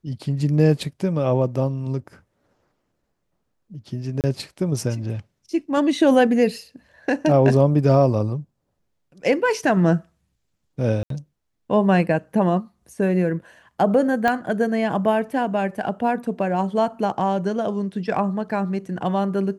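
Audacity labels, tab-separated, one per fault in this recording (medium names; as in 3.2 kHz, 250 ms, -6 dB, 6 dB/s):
4.210000	4.240000	dropout 28 ms
11.030000	11.100000	dropout 73 ms
14.280000	14.280000	pop -9 dBFS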